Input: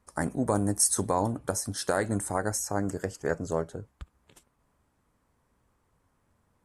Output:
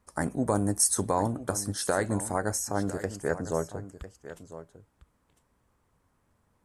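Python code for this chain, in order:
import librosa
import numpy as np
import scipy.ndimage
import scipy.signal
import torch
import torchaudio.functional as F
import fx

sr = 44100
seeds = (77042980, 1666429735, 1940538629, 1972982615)

y = x + 10.0 ** (-14.0 / 20.0) * np.pad(x, (int(1002 * sr / 1000.0), 0))[:len(x)]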